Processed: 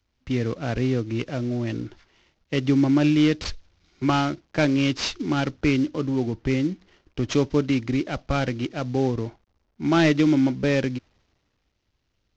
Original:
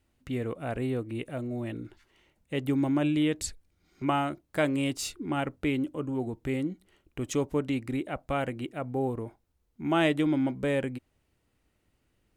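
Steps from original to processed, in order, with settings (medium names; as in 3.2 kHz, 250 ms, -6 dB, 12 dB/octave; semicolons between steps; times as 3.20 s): CVSD coder 32 kbps; dynamic bell 750 Hz, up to -6 dB, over -41 dBFS, Q 0.88; in parallel at -2 dB: compression, threshold -34 dBFS, peak gain reduction 10.5 dB; on the sum: short-mantissa float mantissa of 8-bit; three bands expanded up and down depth 40%; trim +6 dB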